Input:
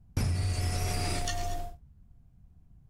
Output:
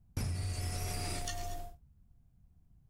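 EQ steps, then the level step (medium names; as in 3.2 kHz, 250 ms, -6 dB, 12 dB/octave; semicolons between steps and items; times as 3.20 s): treble shelf 9.3 kHz +7.5 dB; -7.0 dB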